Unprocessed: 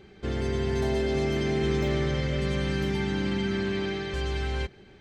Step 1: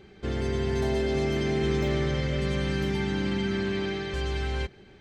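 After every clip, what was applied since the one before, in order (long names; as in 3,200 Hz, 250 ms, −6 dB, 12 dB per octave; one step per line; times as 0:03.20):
no processing that can be heard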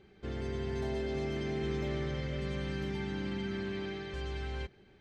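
high-shelf EQ 8,300 Hz −9 dB
level −8.5 dB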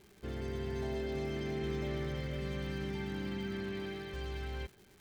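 surface crackle 320 per second −47 dBFS
level −2 dB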